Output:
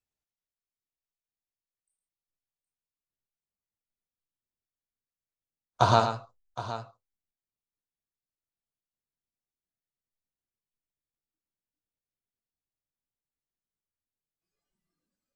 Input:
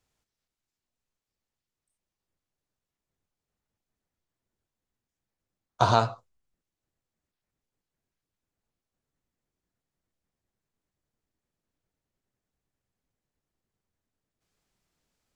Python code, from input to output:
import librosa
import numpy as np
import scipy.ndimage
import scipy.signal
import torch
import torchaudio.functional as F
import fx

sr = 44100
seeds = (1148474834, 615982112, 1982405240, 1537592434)

y = fx.noise_reduce_blind(x, sr, reduce_db=16)
y = fx.echo_multitap(y, sr, ms=(110, 767), db=(-9.0, -14.0))